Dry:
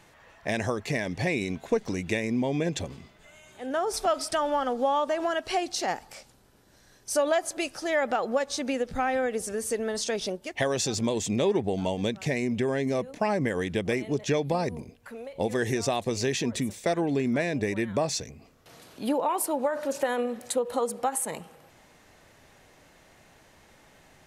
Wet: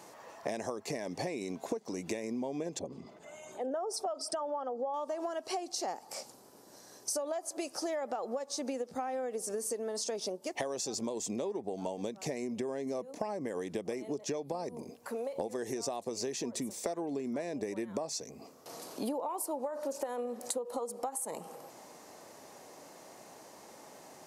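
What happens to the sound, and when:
2.79–4.94 formant sharpening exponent 1.5
whole clip: HPF 270 Hz 12 dB/oct; band shelf 2300 Hz -9.5 dB; compressor 12:1, threshold -40 dBFS; gain +7 dB

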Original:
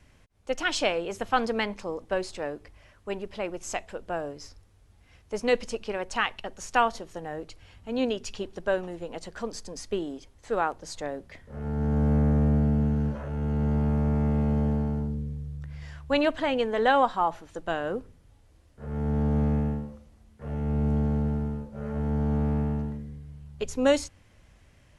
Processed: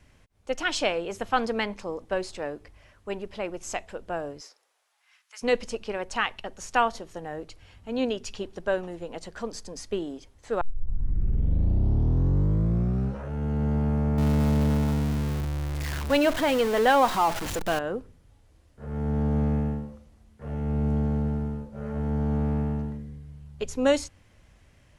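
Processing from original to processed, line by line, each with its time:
4.4–5.41 HPF 360 Hz -> 1500 Hz 24 dB/oct
10.61 tape start 2.71 s
14.18–17.79 zero-crossing step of -26.5 dBFS

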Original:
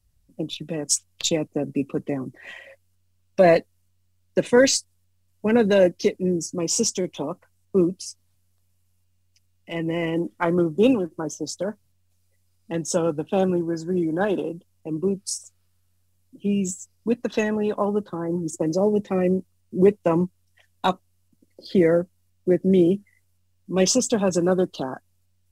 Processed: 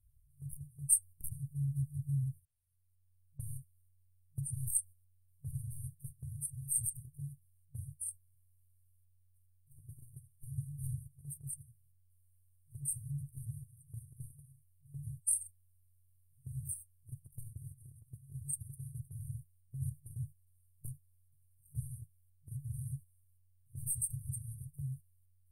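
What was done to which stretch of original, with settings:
2.36–3.4 auto swell 0.796 s
whole clip: FFT band-reject 150–8400 Hz; gate -52 dBFS, range -8 dB; gain +5.5 dB

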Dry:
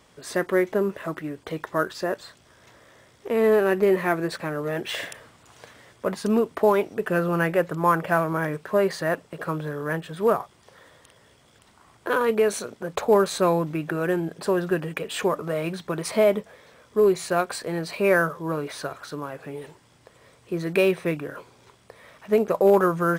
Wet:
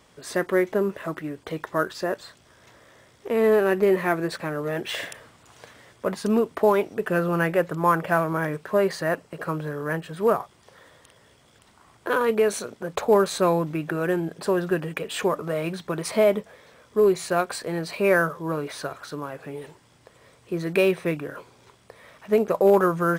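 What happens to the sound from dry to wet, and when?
8.95–10.34 notch 3500 Hz

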